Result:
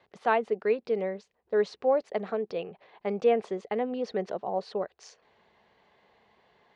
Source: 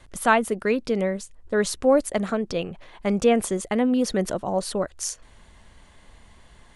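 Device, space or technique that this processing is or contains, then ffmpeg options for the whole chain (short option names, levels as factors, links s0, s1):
kitchen radio: -af "highpass=210,equalizer=f=280:t=q:w=4:g=-8,equalizer=f=430:t=q:w=4:g=8,equalizer=f=770:t=q:w=4:g=6,equalizer=f=1400:t=q:w=4:g=-3,equalizer=f=3300:t=q:w=4:g=-4,lowpass=f=4300:w=0.5412,lowpass=f=4300:w=1.3066,volume=0.398"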